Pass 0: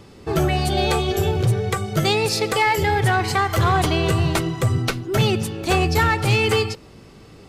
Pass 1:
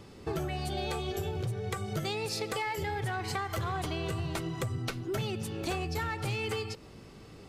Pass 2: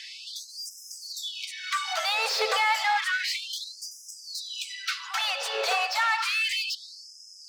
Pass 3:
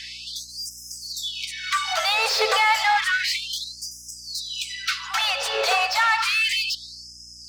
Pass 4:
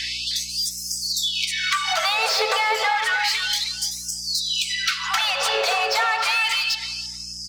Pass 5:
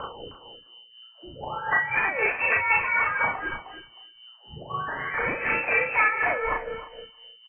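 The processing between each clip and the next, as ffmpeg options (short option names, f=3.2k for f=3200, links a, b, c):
-af "acompressor=threshold=-25dB:ratio=10,volume=-5.5dB"
-filter_complex "[0:a]equalizer=f=4.9k:w=0.68:g=14.5,asplit=2[a][b];[b]highpass=f=720:p=1,volume=26dB,asoftclip=type=tanh:threshold=-10dB[c];[a][c]amix=inputs=2:normalize=0,lowpass=f=1.1k:p=1,volume=-6dB,afftfilt=real='re*gte(b*sr/1024,420*pow(5000/420,0.5+0.5*sin(2*PI*0.31*pts/sr)))':imag='im*gte(b*sr/1024,420*pow(5000/420,0.5+0.5*sin(2*PI*0.31*pts/sr)))':win_size=1024:overlap=0.75"
-af "aeval=exprs='val(0)+0.001*(sin(2*PI*60*n/s)+sin(2*PI*2*60*n/s)/2+sin(2*PI*3*60*n/s)/3+sin(2*PI*4*60*n/s)/4+sin(2*PI*5*60*n/s)/5)':c=same,volume=5dB"
-filter_complex "[0:a]acompressor=threshold=-29dB:ratio=6,asplit=2[a][b];[b]adelay=311,lowpass=f=1.1k:p=1,volume=-3dB,asplit=2[c][d];[d]adelay=311,lowpass=f=1.1k:p=1,volume=0.25,asplit=2[e][f];[f]adelay=311,lowpass=f=1.1k:p=1,volume=0.25,asplit=2[g][h];[h]adelay=311,lowpass=f=1.1k:p=1,volume=0.25[i];[c][e][g][i]amix=inputs=4:normalize=0[j];[a][j]amix=inputs=2:normalize=0,volume=9dB"
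-filter_complex "[0:a]tremolo=f=4:d=0.65,asplit=2[a][b];[b]adelay=37,volume=-3dB[c];[a][c]amix=inputs=2:normalize=0,lowpass=f=2.6k:t=q:w=0.5098,lowpass=f=2.6k:t=q:w=0.6013,lowpass=f=2.6k:t=q:w=0.9,lowpass=f=2.6k:t=q:w=2.563,afreqshift=-3100"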